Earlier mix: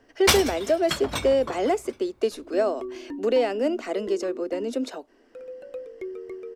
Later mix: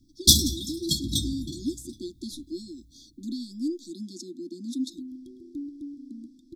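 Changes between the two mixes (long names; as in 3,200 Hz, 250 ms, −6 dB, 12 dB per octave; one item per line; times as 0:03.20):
first sound +6.0 dB
second sound: entry +2.45 s
master: add linear-phase brick-wall band-stop 350–3,300 Hz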